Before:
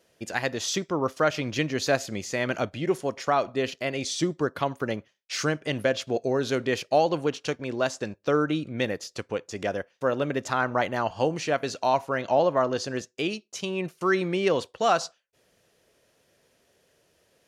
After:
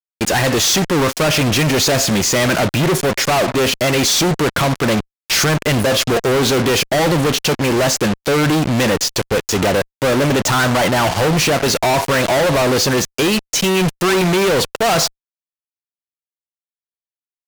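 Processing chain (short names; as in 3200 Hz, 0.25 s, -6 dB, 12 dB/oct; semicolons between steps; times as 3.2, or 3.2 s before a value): dynamic EQ 160 Hz, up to +4 dB, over -48 dBFS, Q 3.2; fuzz box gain 49 dB, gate -43 dBFS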